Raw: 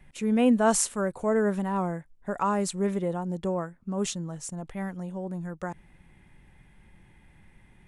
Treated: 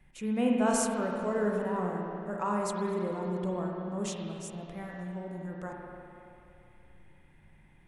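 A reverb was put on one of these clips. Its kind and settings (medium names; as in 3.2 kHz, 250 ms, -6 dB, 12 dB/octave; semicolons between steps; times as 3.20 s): spring tank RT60 2.8 s, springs 33/48 ms, chirp 65 ms, DRR -1 dB; trim -7 dB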